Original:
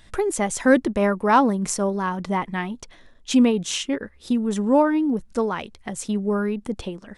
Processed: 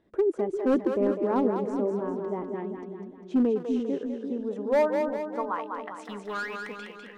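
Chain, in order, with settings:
band-pass filter sweep 370 Hz → 2,000 Hz, 0:03.81–0:06.66
0:06.05–0:06.79: leveller curve on the samples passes 2
gain into a clipping stage and back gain 17.5 dB
on a send: echo with a time of its own for lows and highs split 410 Hz, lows 346 ms, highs 200 ms, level −5 dB

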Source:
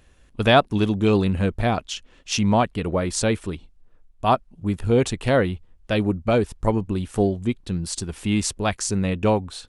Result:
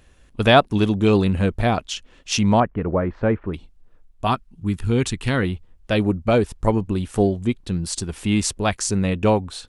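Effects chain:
0:02.60–0:03.54: low-pass filter 1,800 Hz 24 dB per octave
0:04.27–0:05.43: parametric band 600 Hz −13.5 dB 0.85 octaves
level +2 dB

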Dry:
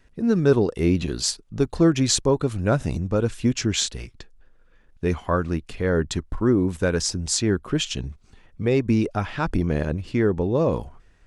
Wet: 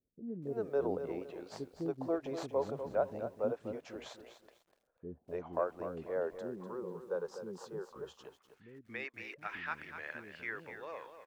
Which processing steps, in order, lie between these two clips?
stylus tracing distortion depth 0.042 ms
band-pass filter sweep 640 Hz → 1,900 Hz, 0:07.77–0:08.38
0:06.11–0:07.96: phaser with its sweep stopped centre 440 Hz, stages 8
multiband delay without the direct sound lows, highs 280 ms, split 340 Hz
feedback echo at a low word length 247 ms, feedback 35%, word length 10 bits, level −9.5 dB
level −4.5 dB

